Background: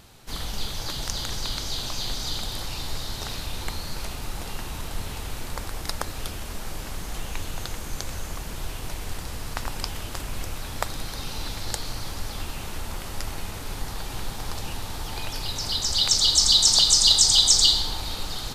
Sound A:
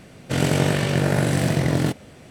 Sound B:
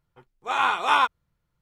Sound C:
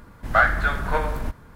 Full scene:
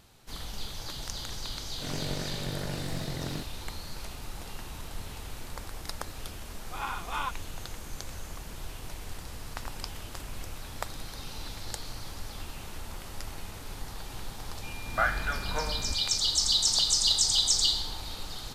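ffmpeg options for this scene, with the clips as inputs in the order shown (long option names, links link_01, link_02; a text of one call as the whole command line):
ffmpeg -i bed.wav -i cue0.wav -i cue1.wav -i cue2.wav -filter_complex "[0:a]volume=-7.5dB[link_01];[2:a]aphaser=in_gain=1:out_gain=1:delay=4.3:decay=0.36:speed=1.7:type=sinusoidal[link_02];[3:a]aeval=exprs='val(0)+0.0178*sin(2*PI*2400*n/s)':channel_layout=same[link_03];[1:a]atrim=end=2.3,asetpts=PTS-STARTPTS,volume=-16dB,afade=type=in:duration=0.004:curve=hsin,afade=type=out:start_time=2.296:duration=0.004:curve=hsin,adelay=1510[link_04];[link_02]atrim=end=1.61,asetpts=PTS-STARTPTS,volume=-14.5dB,afade=type=in:duration=0.004:curve=hsin,afade=type=out:start_time=1.606:duration=0.004:curve=hsin,adelay=6240[link_05];[link_03]atrim=end=1.55,asetpts=PTS-STARTPTS,volume=-9.5dB,afade=type=in:duration=0.004:curve=hsin,afade=type=out:start_time=1.546:duration=0.004:curve=hsin,adelay=14630[link_06];[link_01][link_04][link_05][link_06]amix=inputs=4:normalize=0" out.wav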